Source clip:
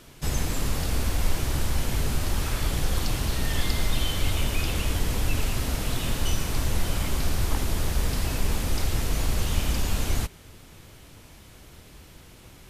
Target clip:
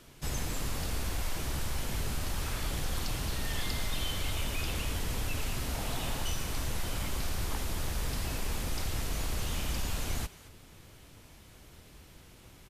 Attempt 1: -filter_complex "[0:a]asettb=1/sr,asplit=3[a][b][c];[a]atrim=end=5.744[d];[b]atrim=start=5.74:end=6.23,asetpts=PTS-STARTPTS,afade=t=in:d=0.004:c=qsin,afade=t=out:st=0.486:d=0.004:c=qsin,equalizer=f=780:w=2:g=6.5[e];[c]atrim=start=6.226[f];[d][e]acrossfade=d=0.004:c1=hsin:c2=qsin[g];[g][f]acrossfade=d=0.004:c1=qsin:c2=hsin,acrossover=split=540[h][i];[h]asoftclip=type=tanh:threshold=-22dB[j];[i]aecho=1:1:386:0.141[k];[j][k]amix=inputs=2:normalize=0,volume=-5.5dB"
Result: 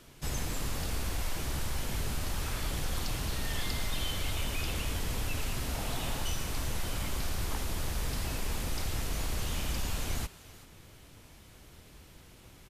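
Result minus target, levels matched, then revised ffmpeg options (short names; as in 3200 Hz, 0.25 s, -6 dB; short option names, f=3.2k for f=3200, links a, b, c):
echo 0.165 s late
-filter_complex "[0:a]asettb=1/sr,asplit=3[a][b][c];[a]atrim=end=5.744[d];[b]atrim=start=5.74:end=6.23,asetpts=PTS-STARTPTS,afade=t=in:d=0.004:c=qsin,afade=t=out:st=0.486:d=0.004:c=qsin,equalizer=f=780:w=2:g=6.5[e];[c]atrim=start=6.226[f];[d][e]acrossfade=d=0.004:c1=hsin:c2=qsin[g];[g][f]acrossfade=d=0.004:c1=qsin:c2=hsin,acrossover=split=540[h][i];[h]asoftclip=type=tanh:threshold=-22dB[j];[i]aecho=1:1:221:0.141[k];[j][k]amix=inputs=2:normalize=0,volume=-5.5dB"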